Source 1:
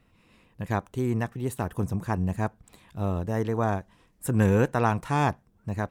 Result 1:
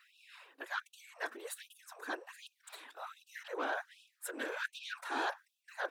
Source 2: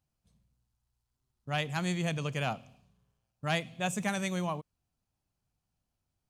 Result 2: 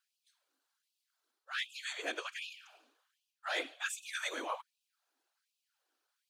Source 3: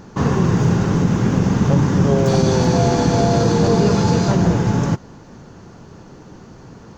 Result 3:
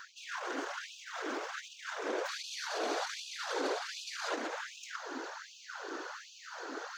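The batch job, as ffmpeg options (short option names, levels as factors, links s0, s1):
-af "equalizer=f=1500:t=o:w=0.56:g=10,asoftclip=type=tanh:threshold=0.119,areverse,acompressor=threshold=0.0141:ratio=4,areverse,afftfilt=real='hypot(re,im)*cos(2*PI*random(0))':imag='hypot(re,im)*sin(2*PI*random(1))':win_size=512:overlap=0.75,equalizer=f=3800:t=o:w=0.74:g=5.5,afftfilt=real='re*gte(b*sr/1024,250*pow(2500/250,0.5+0.5*sin(2*PI*1.3*pts/sr)))':imag='im*gte(b*sr/1024,250*pow(2500/250,0.5+0.5*sin(2*PI*1.3*pts/sr)))':win_size=1024:overlap=0.75,volume=2.82"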